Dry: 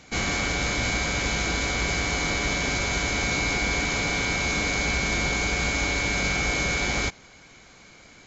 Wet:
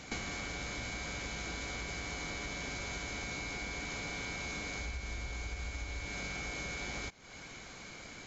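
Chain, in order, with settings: 4.80–6.05 s: resonant low shelf 110 Hz +8.5 dB, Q 1.5; compression 20:1, threshold -38 dBFS, peak gain reduction 23.5 dB; trim +1.5 dB

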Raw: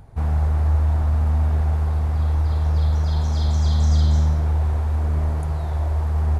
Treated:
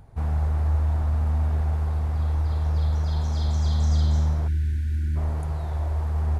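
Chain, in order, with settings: spectral selection erased 4.48–5.16 s, 370–1400 Hz; trim -4 dB

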